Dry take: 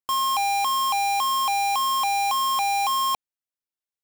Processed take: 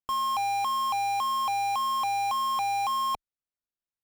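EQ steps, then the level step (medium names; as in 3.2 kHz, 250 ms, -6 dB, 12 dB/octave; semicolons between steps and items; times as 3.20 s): tilt EQ -2 dB/octave; peaking EQ 1.3 kHz +2.5 dB 0.55 oct; -5.0 dB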